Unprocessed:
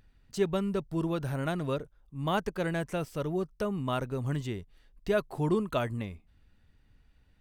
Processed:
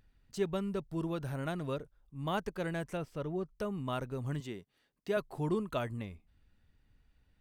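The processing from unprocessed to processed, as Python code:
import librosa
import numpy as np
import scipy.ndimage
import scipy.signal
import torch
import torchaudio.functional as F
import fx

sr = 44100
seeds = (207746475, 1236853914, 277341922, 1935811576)

y = fx.high_shelf(x, sr, hz=5100.0, db=-11.5, at=(2.97, 3.56))
y = fx.highpass(y, sr, hz=170.0, slope=12, at=(4.4, 5.17))
y = y * 10.0 ** (-5.0 / 20.0)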